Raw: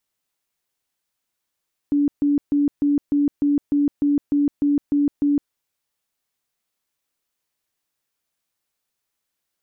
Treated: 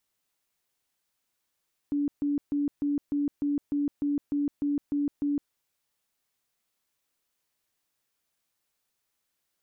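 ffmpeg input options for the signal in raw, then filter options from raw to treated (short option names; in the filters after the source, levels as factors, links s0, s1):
-f lavfi -i "aevalsrc='0.178*sin(2*PI*288*mod(t,0.3))*lt(mod(t,0.3),46/288)':d=3.6:s=44100"
-af "alimiter=limit=0.0631:level=0:latency=1:release=14"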